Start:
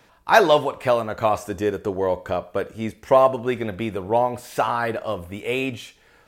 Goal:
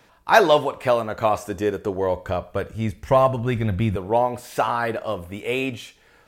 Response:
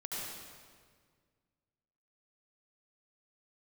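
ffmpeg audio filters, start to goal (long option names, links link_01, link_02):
-filter_complex "[0:a]asettb=1/sr,asplit=3[link_01][link_02][link_03];[link_01]atrim=end=1.884[link_04];[link_02]atrim=start=1.88:end=3.96,asetpts=PTS-STARTPTS,afade=type=in:duration=0.004:curve=qsin,afade=type=out:start_time=2.076:duration=0.004:curve=qsin,asubboost=boost=11.5:cutoff=150[link_05];[link_03]atrim=start=3.956[link_06];[link_04][link_05]acrossfade=duration=0.004:curve1=hsin:curve2=qsin[link_07];[link_07][link_06]acrossfade=duration=0.004:curve1=qsin:curve2=hsin"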